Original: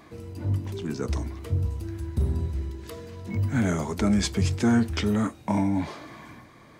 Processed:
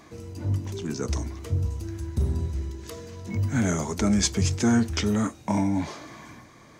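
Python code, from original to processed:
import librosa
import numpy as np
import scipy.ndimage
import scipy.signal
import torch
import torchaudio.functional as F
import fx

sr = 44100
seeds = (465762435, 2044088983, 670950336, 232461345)

y = fx.peak_eq(x, sr, hz=6300.0, db=9.0, octaves=0.61)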